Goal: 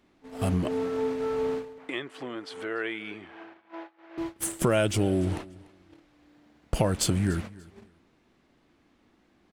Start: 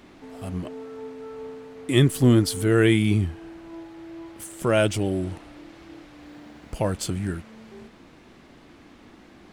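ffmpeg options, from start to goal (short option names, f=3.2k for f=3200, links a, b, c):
-filter_complex "[0:a]agate=range=-24dB:threshold=-39dB:ratio=16:detection=peak,acompressor=threshold=-31dB:ratio=5,asettb=1/sr,asplit=3[a][b][c];[a]atrim=end=1.784[d];[b]atrim=start=1.78:end=4.18,asetpts=PTS-STARTPTS,afade=t=in:d=0.004:c=qsin,afade=t=out:st=2.396:d=0.004:c=qsin,highpass=650,lowpass=2.4k[e];[c]atrim=start=4.176[f];[d][e]acrossfade=d=0.004:c1=hsin:c2=qsin[g];[g][f]acrossfade=d=0.004:c1=qsin:c2=hsin,aecho=1:1:292|584:0.0841|0.0185,volume=9dB"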